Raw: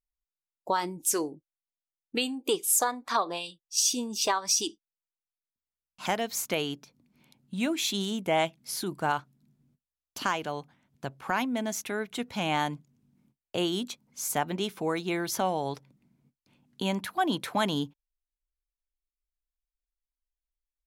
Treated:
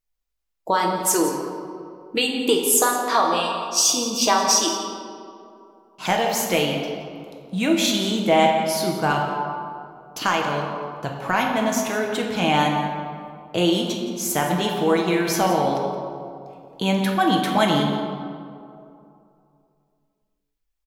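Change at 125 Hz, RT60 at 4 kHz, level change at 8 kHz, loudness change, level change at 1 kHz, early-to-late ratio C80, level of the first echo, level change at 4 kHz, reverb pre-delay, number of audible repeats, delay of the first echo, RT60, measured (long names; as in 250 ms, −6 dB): +10.5 dB, 1.2 s, +7.0 dB, +8.5 dB, +10.0 dB, 4.0 dB, −13.0 dB, +8.5 dB, 6 ms, 1, 171 ms, 2.6 s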